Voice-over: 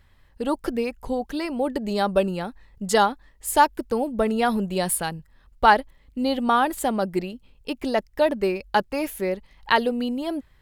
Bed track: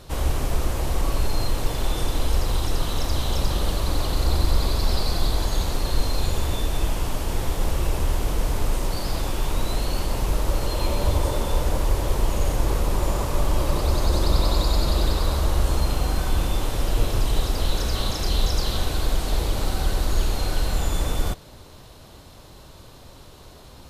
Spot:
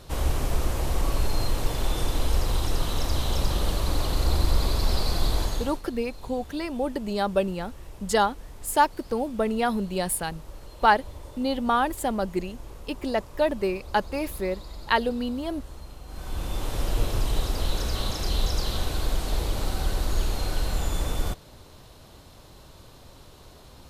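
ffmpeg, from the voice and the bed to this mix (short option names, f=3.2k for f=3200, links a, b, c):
-filter_complex "[0:a]adelay=5200,volume=-3dB[a];[1:a]volume=14.5dB,afade=t=out:st=5.4:d=0.42:silence=0.125893,afade=t=in:st=16.06:d=0.73:silence=0.149624[b];[a][b]amix=inputs=2:normalize=0"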